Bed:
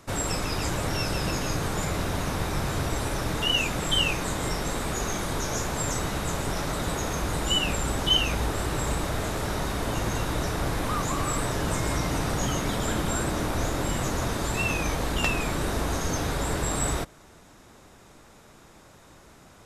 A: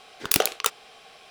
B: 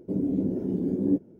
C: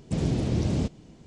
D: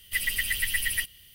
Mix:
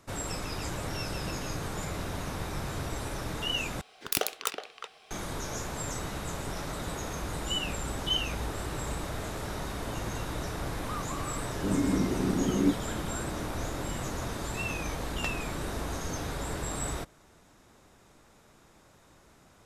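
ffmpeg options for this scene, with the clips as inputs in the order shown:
-filter_complex "[0:a]volume=-7dB[a];[1:a]asplit=2[b][c];[c]adelay=370,highpass=300,lowpass=3.4k,asoftclip=type=hard:threshold=-11dB,volume=-7dB[d];[b][d]amix=inputs=2:normalize=0[e];[a]asplit=2[f][g];[f]atrim=end=3.814[h];[e]atrim=end=1.3,asetpts=PTS-STARTPTS,volume=-7.5dB[i];[g]atrim=start=5.106[j];[2:a]atrim=end=1.39,asetpts=PTS-STARTPTS,volume=-1.5dB,afade=t=in:d=0.004:c=hsin,afade=t=out:st=1.386:d=0.004:c=hsin,adelay=11550[k];[h][i]acrossfade=d=0.004:c1=hsin:c2=hsin[l];[l][j]acrossfade=d=0.004:c1=hsin:c2=hsin[m];[m][k]amix=inputs=2:normalize=0"

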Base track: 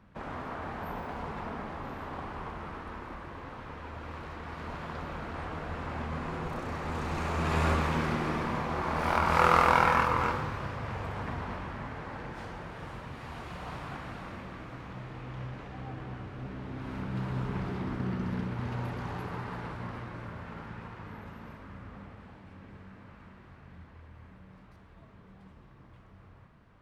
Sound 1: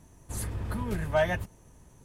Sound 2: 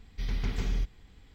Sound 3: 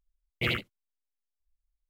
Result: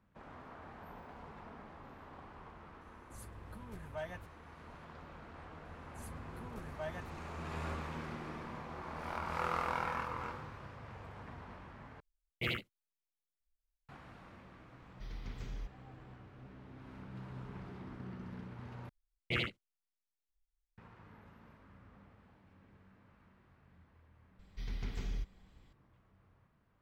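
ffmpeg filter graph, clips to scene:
-filter_complex "[1:a]asplit=2[a][b];[3:a]asplit=2[c][d];[2:a]asplit=2[e][f];[0:a]volume=-13.5dB[g];[d]lowpass=8.3k[h];[g]asplit=3[i][j][k];[i]atrim=end=12.004[l];[c]atrim=end=1.89,asetpts=PTS-STARTPTS,volume=-7.5dB[m];[j]atrim=start=13.886:end=18.894[n];[h]atrim=end=1.89,asetpts=PTS-STARTPTS,volume=-6dB[o];[k]atrim=start=20.776[p];[a]atrim=end=2.04,asetpts=PTS-STARTPTS,volume=-17.5dB,afade=t=in:d=0.004:c=hsin,afade=t=out:st=2.036:d=0.004:c=hsin,adelay=2810[q];[b]atrim=end=2.04,asetpts=PTS-STARTPTS,volume=-17.5dB,afade=t=in:d=0.004:c=hsin,afade=t=out:st=2.036:d=0.004:c=hsin,adelay=249165S[r];[e]atrim=end=1.34,asetpts=PTS-STARTPTS,volume=-14dB,afade=t=in:d=0.004:c=hsin,afade=t=out:st=1.336:d=0.004:c=hsin,adelay=14820[s];[f]atrim=end=1.34,asetpts=PTS-STARTPTS,volume=-9dB,afade=t=in:d=0.004:c=hsin,afade=t=out:st=1.336:d=0.004:c=hsin,adelay=24390[t];[l][m]acrossfade=d=0.004:c1=hsin:c2=hsin[u];[u][n]acrossfade=d=0.004:c1=hsin:c2=hsin[v];[v][o]acrossfade=d=0.004:c1=hsin:c2=hsin[w];[w][p]acrossfade=d=0.004:c1=hsin:c2=hsin[x];[x][q][r][s][t]amix=inputs=5:normalize=0"

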